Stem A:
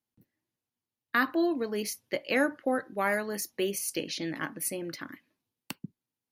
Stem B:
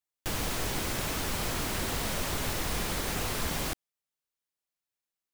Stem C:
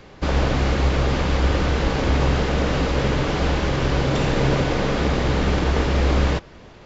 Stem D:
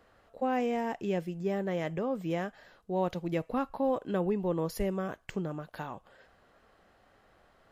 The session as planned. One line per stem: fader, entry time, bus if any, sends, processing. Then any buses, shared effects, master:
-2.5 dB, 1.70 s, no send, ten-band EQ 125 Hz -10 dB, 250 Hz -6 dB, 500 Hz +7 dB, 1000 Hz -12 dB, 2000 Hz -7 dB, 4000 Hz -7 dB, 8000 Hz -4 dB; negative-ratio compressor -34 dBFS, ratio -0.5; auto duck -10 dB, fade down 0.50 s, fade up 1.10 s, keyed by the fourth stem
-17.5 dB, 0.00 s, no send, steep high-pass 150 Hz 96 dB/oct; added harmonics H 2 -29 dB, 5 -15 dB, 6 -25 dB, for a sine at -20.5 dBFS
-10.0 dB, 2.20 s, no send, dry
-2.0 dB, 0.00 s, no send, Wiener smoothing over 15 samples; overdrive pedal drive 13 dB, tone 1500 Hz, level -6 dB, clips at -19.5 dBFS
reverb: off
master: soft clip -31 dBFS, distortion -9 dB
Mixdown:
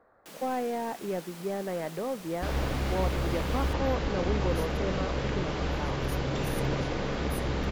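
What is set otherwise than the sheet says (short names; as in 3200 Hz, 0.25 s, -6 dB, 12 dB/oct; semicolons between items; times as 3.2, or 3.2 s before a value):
stem A: entry 1.70 s -> 2.70 s; master: missing soft clip -31 dBFS, distortion -9 dB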